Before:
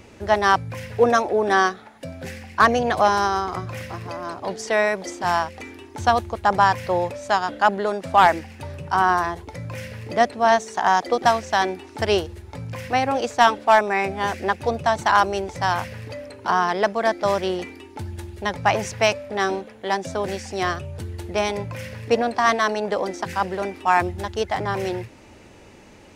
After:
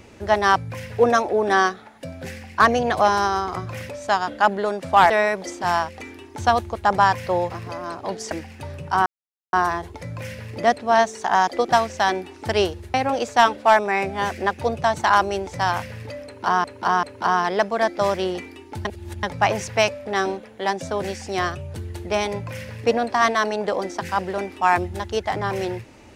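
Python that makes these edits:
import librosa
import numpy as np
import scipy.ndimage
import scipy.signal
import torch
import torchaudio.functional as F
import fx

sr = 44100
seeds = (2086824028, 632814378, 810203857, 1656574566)

y = fx.edit(x, sr, fx.swap(start_s=3.89, length_s=0.81, other_s=7.1, other_length_s=1.21),
    fx.insert_silence(at_s=9.06, length_s=0.47),
    fx.cut(start_s=12.47, length_s=0.49),
    fx.repeat(start_s=16.27, length_s=0.39, count=3),
    fx.reverse_span(start_s=18.09, length_s=0.38), tone=tone)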